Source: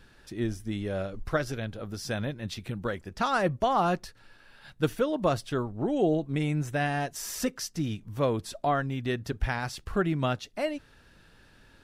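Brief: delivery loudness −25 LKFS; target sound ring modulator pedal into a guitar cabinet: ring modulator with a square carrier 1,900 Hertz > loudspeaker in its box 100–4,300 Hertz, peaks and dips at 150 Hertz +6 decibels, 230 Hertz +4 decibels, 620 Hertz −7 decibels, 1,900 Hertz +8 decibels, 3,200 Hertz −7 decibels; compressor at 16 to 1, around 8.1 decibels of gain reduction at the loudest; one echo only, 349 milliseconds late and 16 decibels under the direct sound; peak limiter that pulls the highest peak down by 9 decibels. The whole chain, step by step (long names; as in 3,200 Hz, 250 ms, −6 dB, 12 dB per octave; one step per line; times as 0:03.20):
downward compressor 16 to 1, threshold −28 dBFS
brickwall limiter −27 dBFS
single-tap delay 349 ms −16 dB
ring modulator with a square carrier 1,900 Hz
loudspeaker in its box 100–4,300 Hz, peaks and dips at 150 Hz +6 dB, 230 Hz +4 dB, 620 Hz −7 dB, 1,900 Hz +8 dB, 3,200 Hz −7 dB
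level +7.5 dB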